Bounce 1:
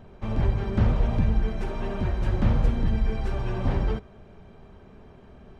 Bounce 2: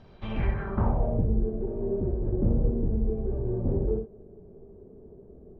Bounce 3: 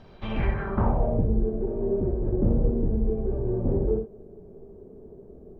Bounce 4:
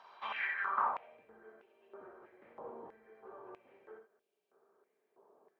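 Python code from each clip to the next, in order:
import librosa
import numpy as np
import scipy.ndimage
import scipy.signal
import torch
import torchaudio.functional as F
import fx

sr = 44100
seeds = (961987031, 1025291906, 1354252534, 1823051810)

y1 = fx.room_early_taps(x, sr, ms=(60, 78), db=(-8.5, -11.0))
y1 = fx.filter_sweep_lowpass(y1, sr, from_hz=4900.0, to_hz=420.0, start_s=0.08, end_s=1.26, q=3.1)
y1 = y1 * librosa.db_to_amplitude(-4.5)
y2 = fx.peak_eq(y1, sr, hz=78.0, db=-3.5, octaves=2.6)
y2 = y2 * librosa.db_to_amplitude(4.0)
y3 = fx.filter_held_highpass(y2, sr, hz=3.1, low_hz=1000.0, high_hz=2800.0)
y3 = y3 * librosa.db_to_amplitude(-5.5)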